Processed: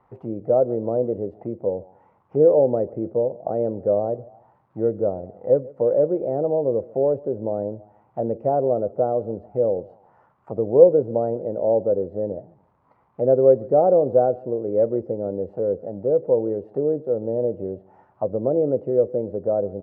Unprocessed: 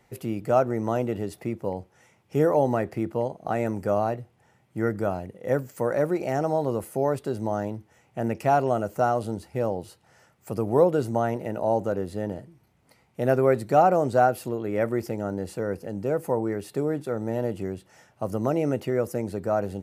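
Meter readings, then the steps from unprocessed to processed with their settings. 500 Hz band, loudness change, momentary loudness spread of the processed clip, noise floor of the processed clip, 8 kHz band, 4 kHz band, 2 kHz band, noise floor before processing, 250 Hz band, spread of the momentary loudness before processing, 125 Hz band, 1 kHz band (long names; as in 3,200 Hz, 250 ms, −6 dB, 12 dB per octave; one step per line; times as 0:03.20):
+6.0 dB, +4.5 dB, 13 LU, −62 dBFS, below −30 dB, can't be measured, below −20 dB, −64 dBFS, 0.0 dB, 11 LU, −2.5 dB, −4.0 dB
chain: on a send: repeating echo 144 ms, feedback 37%, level −22.5 dB
on the sum: surface crackle 500 per second −51 dBFS
envelope-controlled low-pass 520–1,100 Hz down, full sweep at −25.5 dBFS
level −3 dB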